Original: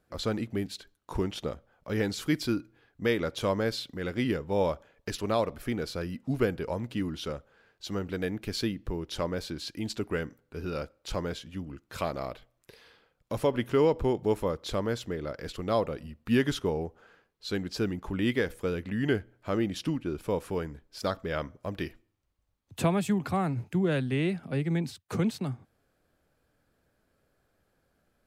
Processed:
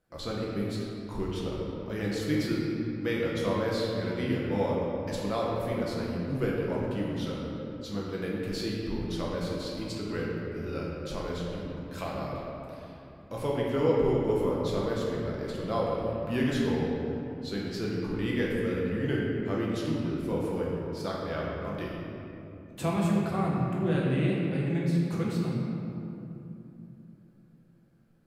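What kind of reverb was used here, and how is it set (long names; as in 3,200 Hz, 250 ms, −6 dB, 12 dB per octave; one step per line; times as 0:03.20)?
rectangular room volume 130 cubic metres, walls hard, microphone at 0.72 metres
level −6.5 dB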